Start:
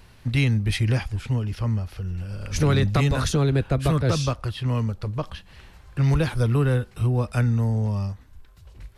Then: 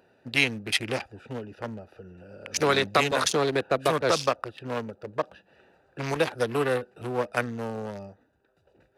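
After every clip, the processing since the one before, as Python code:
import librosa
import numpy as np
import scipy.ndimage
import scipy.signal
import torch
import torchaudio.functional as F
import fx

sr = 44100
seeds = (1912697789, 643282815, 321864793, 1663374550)

y = fx.wiener(x, sr, points=41)
y = scipy.signal.sosfilt(scipy.signal.butter(2, 530.0, 'highpass', fs=sr, output='sos'), y)
y = y * 10.0 ** (7.5 / 20.0)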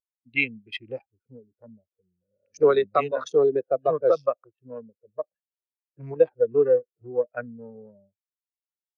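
y = fx.spectral_expand(x, sr, expansion=2.5)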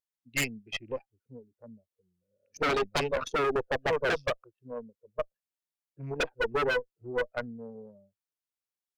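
y = 10.0 ** (-20.0 / 20.0) * (np.abs((x / 10.0 ** (-20.0 / 20.0) + 3.0) % 4.0 - 2.0) - 1.0)
y = fx.tube_stage(y, sr, drive_db=24.0, bias=0.7)
y = y * 10.0 ** (3.0 / 20.0)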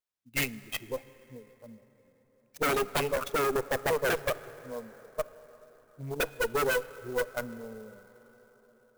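y = fx.rev_plate(x, sr, seeds[0], rt60_s=4.9, hf_ratio=0.45, predelay_ms=0, drr_db=16.0)
y = fx.clock_jitter(y, sr, seeds[1], jitter_ms=0.035)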